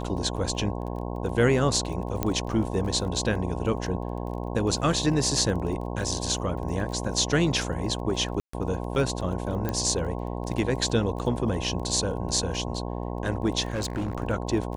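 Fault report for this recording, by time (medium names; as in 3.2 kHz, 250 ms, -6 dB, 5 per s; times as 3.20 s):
buzz 60 Hz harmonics 18 -32 dBFS
crackle 20 per s -35 dBFS
2.23 s: pop -11 dBFS
8.40–8.53 s: dropout 134 ms
9.69 s: pop -14 dBFS
13.70–14.15 s: clipped -25 dBFS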